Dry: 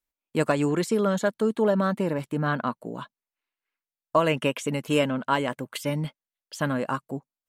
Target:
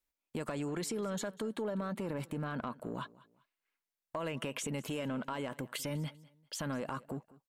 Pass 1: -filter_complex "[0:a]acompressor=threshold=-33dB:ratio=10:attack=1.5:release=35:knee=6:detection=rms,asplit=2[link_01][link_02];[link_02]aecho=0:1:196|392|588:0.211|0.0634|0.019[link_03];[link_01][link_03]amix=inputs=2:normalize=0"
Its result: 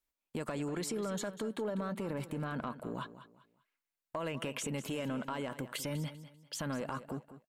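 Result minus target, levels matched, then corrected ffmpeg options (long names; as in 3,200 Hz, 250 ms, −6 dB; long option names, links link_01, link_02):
echo-to-direct +7.5 dB
-filter_complex "[0:a]acompressor=threshold=-33dB:ratio=10:attack=1.5:release=35:knee=6:detection=rms,asplit=2[link_01][link_02];[link_02]aecho=0:1:196|392:0.0891|0.0267[link_03];[link_01][link_03]amix=inputs=2:normalize=0"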